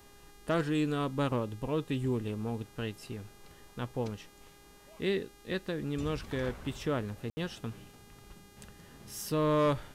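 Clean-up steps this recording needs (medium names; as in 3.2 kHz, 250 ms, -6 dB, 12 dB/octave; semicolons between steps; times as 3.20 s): clip repair -21 dBFS; de-hum 406.7 Hz, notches 36; room tone fill 7.30–7.37 s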